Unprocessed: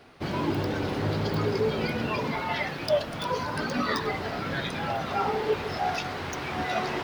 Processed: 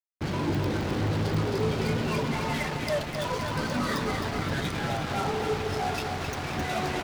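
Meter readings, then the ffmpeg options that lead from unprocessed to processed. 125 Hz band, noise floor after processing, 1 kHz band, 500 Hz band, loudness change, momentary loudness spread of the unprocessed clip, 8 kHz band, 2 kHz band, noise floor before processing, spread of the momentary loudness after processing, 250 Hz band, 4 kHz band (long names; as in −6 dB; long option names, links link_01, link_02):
+3.5 dB, −34 dBFS, −1.5 dB, −1.5 dB, 0.0 dB, 4 LU, +4.5 dB, −1.0 dB, −35 dBFS, 3 LU, +1.0 dB, 0.0 dB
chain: -af "lowshelf=frequency=180:gain=10,asoftclip=type=tanh:threshold=-27dB,acrusher=bits=4:mix=0:aa=0.5,aecho=1:1:263|526|789|1052|1315|1578|1841|2104:0.501|0.291|0.169|0.0978|0.0567|0.0329|0.0191|0.0111"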